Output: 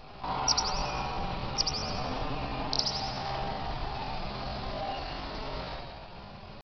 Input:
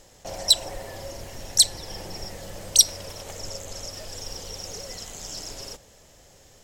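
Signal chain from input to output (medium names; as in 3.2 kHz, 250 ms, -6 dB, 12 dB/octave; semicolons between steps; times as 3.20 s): in parallel at -2 dB: compression, threshold -46 dBFS, peak gain reduction 32.5 dB; on the sum: spring tank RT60 1.3 s, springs 48/55 ms, chirp 55 ms, DRR -2.5 dB; resampled via 8 kHz; pitch shift +6 st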